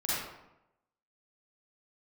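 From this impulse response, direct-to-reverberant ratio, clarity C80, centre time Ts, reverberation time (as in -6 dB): -9.5 dB, 0.0 dB, 93 ms, 0.90 s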